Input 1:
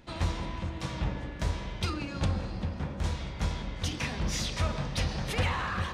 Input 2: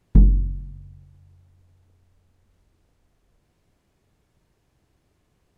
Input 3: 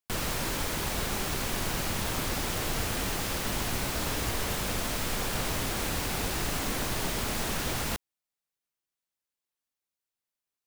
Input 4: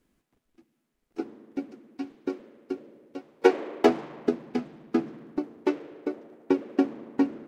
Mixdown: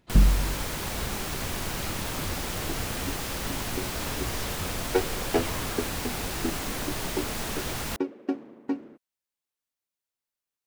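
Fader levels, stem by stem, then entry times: −10.0, −5.0, −1.0, −6.0 decibels; 0.00, 0.00, 0.00, 1.50 seconds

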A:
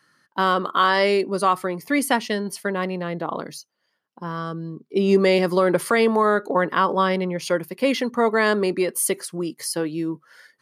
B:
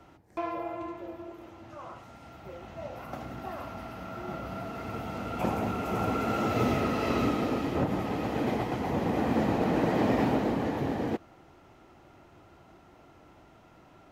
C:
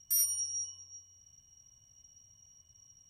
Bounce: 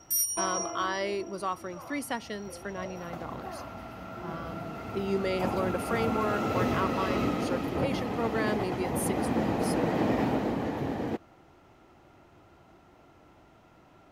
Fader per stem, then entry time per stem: −13.0, −1.5, +1.5 decibels; 0.00, 0.00, 0.00 seconds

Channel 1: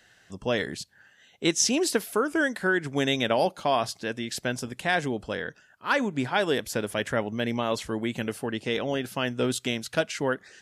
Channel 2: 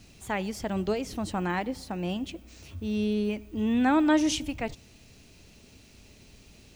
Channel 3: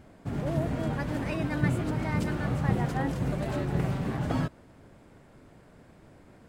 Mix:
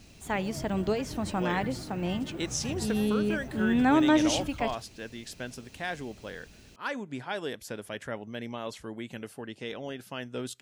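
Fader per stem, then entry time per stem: −9.5, 0.0, −12.5 decibels; 0.95, 0.00, 0.00 seconds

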